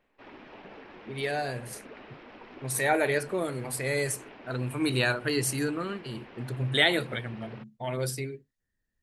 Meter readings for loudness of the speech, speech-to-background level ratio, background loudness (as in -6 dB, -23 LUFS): -29.5 LUFS, 18.5 dB, -48.0 LUFS